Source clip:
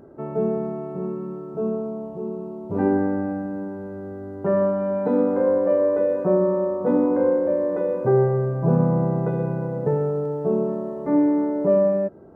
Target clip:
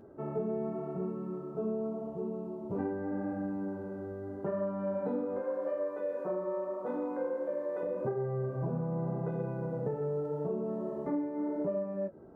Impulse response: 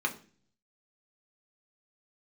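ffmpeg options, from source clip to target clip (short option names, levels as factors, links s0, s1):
-filter_complex "[0:a]asettb=1/sr,asplit=3[s0][s1][s2];[s0]atrim=end=5.394[s3];[s1]atrim=start=5.39:end=7.83,asetpts=PTS-STARTPTS,afade=t=in:d=0.004:c=qsin,afade=t=out:st=2.436:d=0.004:c=qsin,highpass=f=760:p=1[s4];[s2]atrim=start=7.826[s5];[s3][s4]acrossfade=d=0.004:c1=hsin:c2=qsin[s6];[s6][s5]acrossfade=d=0.004:c1=qsin:c2=hsin,acompressor=threshold=0.0631:ratio=10,flanger=delay=9.2:depth=9.4:regen=-39:speed=0.84:shape=sinusoidal,volume=0.75"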